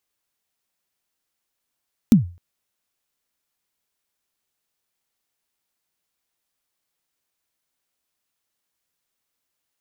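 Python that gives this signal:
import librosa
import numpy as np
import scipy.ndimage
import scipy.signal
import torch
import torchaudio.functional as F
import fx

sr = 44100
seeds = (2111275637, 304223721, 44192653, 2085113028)

y = fx.drum_kick(sr, seeds[0], length_s=0.26, level_db=-4.5, start_hz=250.0, end_hz=87.0, sweep_ms=129.0, decay_s=0.35, click=True)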